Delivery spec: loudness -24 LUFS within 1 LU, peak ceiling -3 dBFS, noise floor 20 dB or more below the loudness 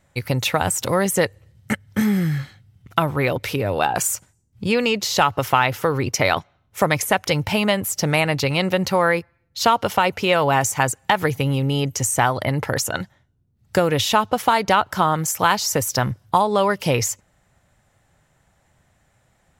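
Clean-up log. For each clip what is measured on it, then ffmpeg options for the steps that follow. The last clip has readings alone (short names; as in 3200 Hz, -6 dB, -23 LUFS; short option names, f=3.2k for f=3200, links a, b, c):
loudness -20.5 LUFS; peak -3.0 dBFS; loudness target -24.0 LUFS
-> -af "volume=-3.5dB"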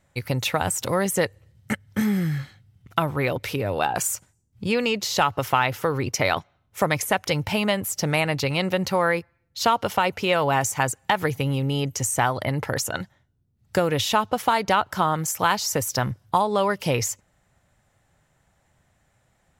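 loudness -24.0 LUFS; peak -6.5 dBFS; noise floor -67 dBFS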